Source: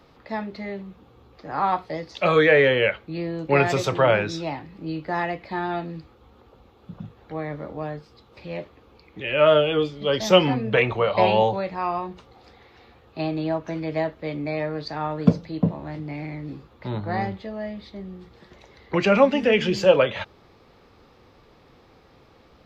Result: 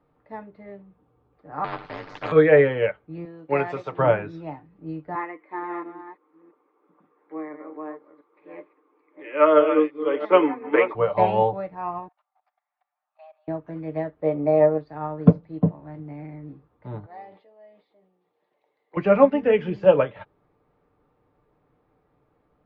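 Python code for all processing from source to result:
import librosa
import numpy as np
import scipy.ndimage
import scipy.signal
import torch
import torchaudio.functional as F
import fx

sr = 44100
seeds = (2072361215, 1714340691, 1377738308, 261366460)

y = fx.chain(x, sr, fx.bass_treble(bass_db=-10, treble_db=-1),
    fx.ring_mod(carrier_hz=49.0),
    fx.spectral_comp(ratio=4.0), at=(1.64, 2.32))
y = fx.chain(y, sr, fx.highpass(hz=390.0, slope=6),
    fx.high_shelf(hz=5600.0, db=8.5), at=(3.25, 3.99))
y = fx.chain(y, sr, fx.reverse_delay(ms=340, wet_db=-7),
    fx.cabinet(low_hz=310.0, low_slope=24, high_hz=3600.0, hz=(320.0, 680.0, 1100.0, 2100.0, 2900.0), db=(8, -7, 8, 8, -4)), at=(5.15, 10.95))
y = fx.chain(y, sr, fx.steep_highpass(hz=610.0, slope=96),
    fx.high_shelf(hz=3800.0, db=-3.5),
    fx.level_steps(step_db=18), at=(12.08, 13.48))
y = fx.chain(y, sr, fx.peak_eq(hz=590.0, db=10.0, octaves=1.5),
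    fx.notch(hz=1600.0, q=12.0), at=(14.22, 14.78))
y = fx.chain(y, sr, fx.bandpass_edges(low_hz=660.0, high_hz=6000.0),
    fx.peak_eq(hz=1400.0, db=-12.5, octaves=1.2),
    fx.sustainer(db_per_s=57.0), at=(17.06, 18.97))
y = scipy.signal.sosfilt(scipy.signal.butter(2, 1500.0, 'lowpass', fs=sr, output='sos'), y)
y = y + 0.4 * np.pad(y, (int(6.7 * sr / 1000.0), 0))[:len(y)]
y = fx.upward_expand(y, sr, threshold_db=-40.0, expansion=1.5)
y = y * 10.0 ** (2.5 / 20.0)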